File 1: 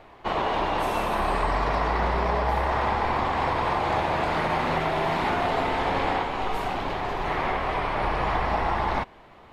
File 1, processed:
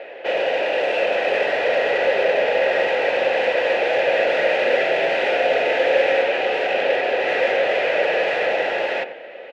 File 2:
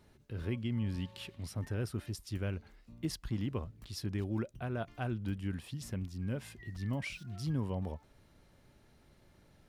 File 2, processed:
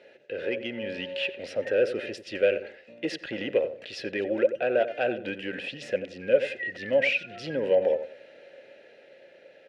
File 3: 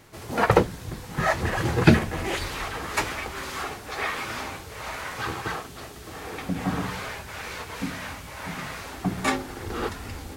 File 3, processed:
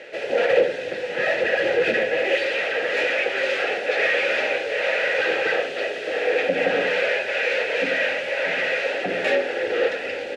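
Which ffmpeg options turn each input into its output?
-filter_complex "[0:a]lowpass=9500,asplit=2[s0][s1];[s1]highpass=f=720:p=1,volume=63.1,asoftclip=type=tanh:threshold=0.944[s2];[s0][s2]amix=inputs=2:normalize=0,lowpass=f=4200:p=1,volume=0.501,dynaudnorm=f=190:g=11:m=1.58,asplit=3[s3][s4][s5];[s3]bandpass=f=530:t=q:w=8,volume=1[s6];[s4]bandpass=f=1840:t=q:w=8,volume=0.501[s7];[s5]bandpass=f=2480:t=q:w=8,volume=0.355[s8];[s6][s7][s8]amix=inputs=3:normalize=0,bandreject=f=1800:w=11,asplit=2[s9][s10];[s10]adelay=89,lowpass=f=1200:p=1,volume=0.316,asplit=2[s11][s12];[s12]adelay=89,lowpass=f=1200:p=1,volume=0.28,asplit=2[s13][s14];[s14]adelay=89,lowpass=f=1200:p=1,volume=0.28[s15];[s11][s13][s15]amix=inputs=3:normalize=0[s16];[s9][s16]amix=inputs=2:normalize=0"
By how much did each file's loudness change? +6.5 LU, +10.5 LU, +6.0 LU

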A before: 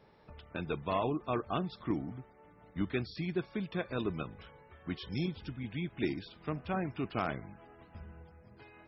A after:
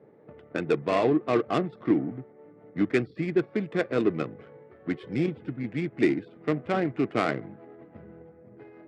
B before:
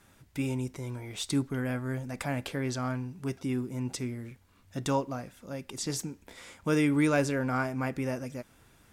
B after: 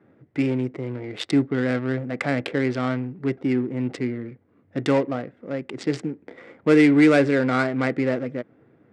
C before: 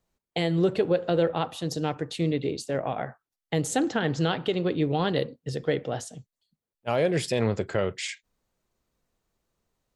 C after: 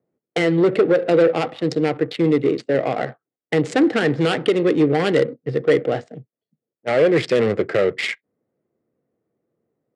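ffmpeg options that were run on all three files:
-af "adynamicsmooth=sensitivity=7.5:basefreq=730,aeval=exprs='0.237*sin(PI/2*1.78*val(0)/0.237)':c=same,highpass=f=130:w=0.5412,highpass=f=130:w=1.3066,equalizer=f=180:t=q:w=4:g=-5,equalizer=f=320:t=q:w=4:g=4,equalizer=f=470:t=q:w=4:g=5,equalizer=f=950:t=q:w=4:g=-7,equalizer=f=2000:t=q:w=4:g=7,equalizer=f=6300:t=q:w=4:g=-6,lowpass=f=8600:w=0.5412,lowpass=f=8600:w=1.3066"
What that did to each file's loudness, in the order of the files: +9.0 LU, +9.0 LU, +8.5 LU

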